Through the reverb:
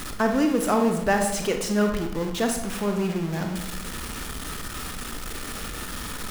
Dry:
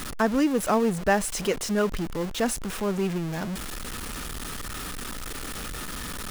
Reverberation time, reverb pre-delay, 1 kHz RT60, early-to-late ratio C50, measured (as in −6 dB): 0.95 s, 28 ms, 0.85 s, 6.0 dB